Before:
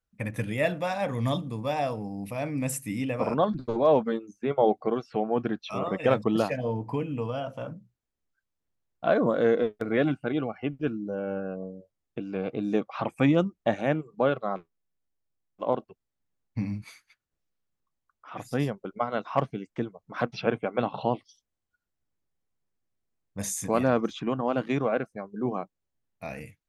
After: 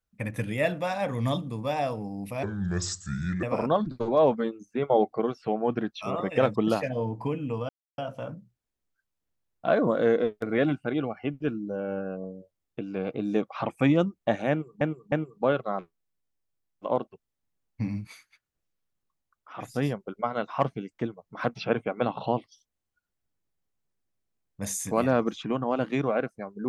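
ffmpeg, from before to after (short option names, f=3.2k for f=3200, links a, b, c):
-filter_complex "[0:a]asplit=6[a][b][c][d][e][f];[a]atrim=end=2.434[g];[b]atrim=start=2.43:end=3.11,asetpts=PTS-STARTPTS,asetrate=29988,aresample=44100[h];[c]atrim=start=3.106:end=7.37,asetpts=PTS-STARTPTS,afade=t=out:st=4.26:d=0.004:c=hsin,apad=pad_dur=0.29[i];[d]atrim=start=7.37:end=14.202,asetpts=PTS-STARTPTS,afade=t=in:d=0.004:c=hsin[j];[e]atrim=start=13.888:end=14.202[k];[f]atrim=start=13.888[l];[g][h]acrossfade=d=0.004:c1=hsin:c2=hsin[m];[i][j]concat=n=2:v=0:a=1[n];[m][n]acrossfade=d=0.004:c1=hsin:c2=hsin[o];[o][k]acrossfade=d=0.004:c1=hsin:c2=hsin[p];[p][l]acrossfade=d=0.004:c1=hsin:c2=hsin"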